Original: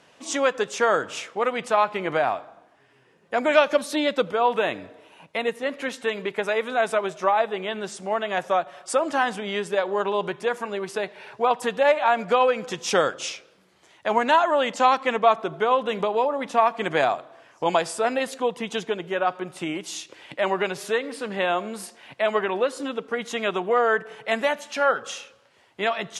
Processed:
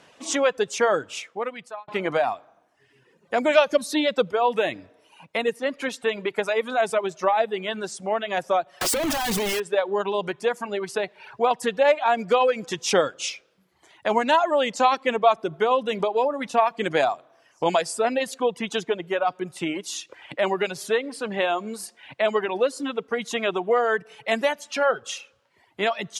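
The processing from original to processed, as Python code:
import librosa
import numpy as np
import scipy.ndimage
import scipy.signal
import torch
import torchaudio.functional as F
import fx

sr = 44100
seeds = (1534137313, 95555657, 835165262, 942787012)

y = fx.clip_1bit(x, sr, at=(8.81, 9.6))
y = fx.edit(y, sr, fx.fade_out_span(start_s=0.97, length_s=0.91), tone=tone)
y = fx.dereverb_blind(y, sr, rt60_s=1.0)
y = fx.dynamic_eq(y, sr, hz=1300.0, q=1.0, threshold_db=-32.0, ratio=4.0, max_db=-5)
y = F.gain(torch.from_numpy(y), 2.5).numpy()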